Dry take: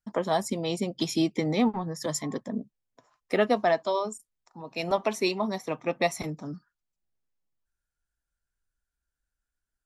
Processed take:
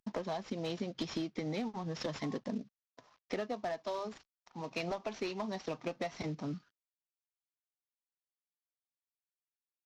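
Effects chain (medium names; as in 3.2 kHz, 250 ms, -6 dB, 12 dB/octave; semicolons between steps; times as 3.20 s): CVSD coder 32 kbps; compression 16:1, threshold -33 dBFS, peak gain reduction 15.5 dB; one-sided clip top -31.5 dBFS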